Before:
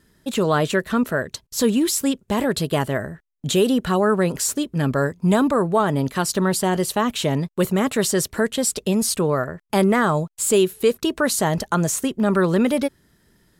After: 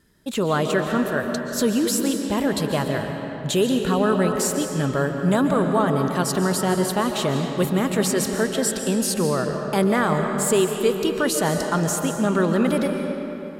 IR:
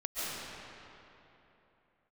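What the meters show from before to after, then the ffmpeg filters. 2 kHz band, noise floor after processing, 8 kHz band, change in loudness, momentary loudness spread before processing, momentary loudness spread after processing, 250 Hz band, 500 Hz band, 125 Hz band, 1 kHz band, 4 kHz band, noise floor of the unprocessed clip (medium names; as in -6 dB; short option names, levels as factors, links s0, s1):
-1.0 dB, -31 dBFS, -2.0 dB, -1.0 dB, 5 LU, 5 LU, -0.5 dB, -1.0 dB, -1.0 dB, -1.0 dB, -1.5 dB, -63 dBFS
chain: -filter_complex "[0:a]asplit=2[s0][s1];[1:a]atrim=start_sample=2205[s2];[s1][s2]afir=irnorm=-1:irlink=0,volume=0.422[s3];[s0][s3]amix=inputs=2:normalize=0,volume=0.596"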